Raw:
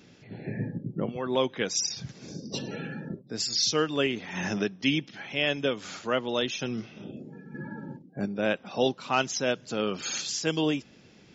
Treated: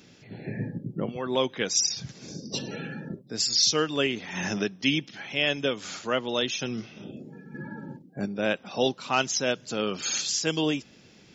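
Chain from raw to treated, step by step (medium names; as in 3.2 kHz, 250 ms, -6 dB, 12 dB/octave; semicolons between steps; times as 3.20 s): treble shelf 3.6 kHz +6 dB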